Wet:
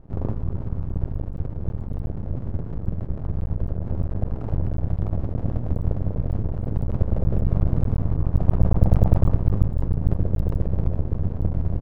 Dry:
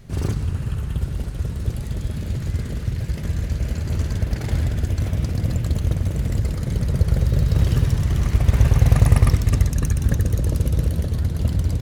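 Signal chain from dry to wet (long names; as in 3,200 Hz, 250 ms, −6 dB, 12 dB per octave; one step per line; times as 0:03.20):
inverse Chebyshev low-pass filter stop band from 4,300 Hz, stop band 70 dB
slap from a distant wall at 57 metres, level −13 dB
dynamic equaliser 200 Hz, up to −6 dB, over −34 dBFS, Q 1.4
half-wave rectification
level +2 dB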